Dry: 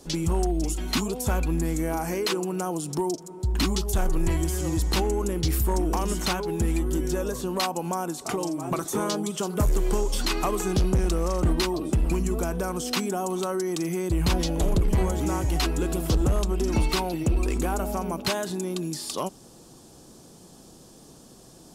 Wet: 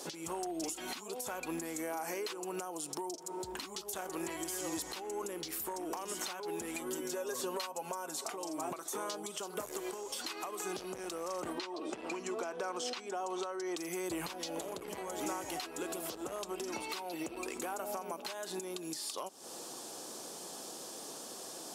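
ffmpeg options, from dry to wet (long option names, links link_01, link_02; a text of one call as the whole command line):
ffmpeg -i in.wav -filter_complex "[0:a]asettb=1/sr,asplit=3[link_01][link_02][link_03];[link_01]atrim=end=6.744[link_04];[link_02]atrim=start=6.74:end=8.25,asetpts=PTS-STARTPTS,afade=type=in:duration=0.004:curve=qsin,afade=type=out:start_time=1.506:duration=0.004:curve=qsin,aecho=1:1:7.4:0.65,atrim=end_sample=66591[link_05];[link_03]atrim=start=8.246[link_06];[link_04][link_05]acrossfade=duration=0.004:curve1=hsin:curve2=qsin[link_07];[link_07][link_06]acrossfade=duration=0.004:curve1=qsin:curve2=hsin,asettb=1/sr,asplit=3[link_08][link_09][link_10];[link_08]atrim=end=11.584[link_11];[link_09]atrim=start=11.58:end=13.77,asetpts=PTS-STARTPTS,afade=type=in:duration=0.004:curve=qsin,afade=type=out:start_time=2.186:duration=0.004:curve=qsin,acrossover=split=200 6700:gain=0.224 1 0.0794[link_12][link_13][link_14];[link_12][link_13][link_14]amix=inputs=3:normalize=0[link_15];[link_10]atrim=start=13.766[link_16];[link_11][link_15]acrossfade=duration=0.004:curve1=hsin:curve2=qsin[link_17];[link_17][link_16]acrossfade=duration=0.004:curve1=qsin:curve2=hsin,highpass=480,acompressor=threshold=-41dB:ratio=16,alimiter=level_in=10.5dB:limit=-24dB:level=0:latency=1:release=306,volume=-10.5dB,volume=7.5dB" out.wav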